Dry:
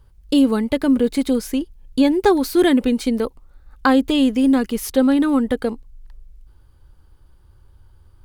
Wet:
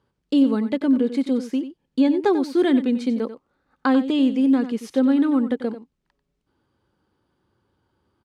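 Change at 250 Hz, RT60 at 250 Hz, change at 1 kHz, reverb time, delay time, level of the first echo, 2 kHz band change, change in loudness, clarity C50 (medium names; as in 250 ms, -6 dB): -2.0 dB, no reverb, -5.5 dB, no reverb, 92 ms, -12.0 dB, -6.5 dB, -2.5 dB, no reverb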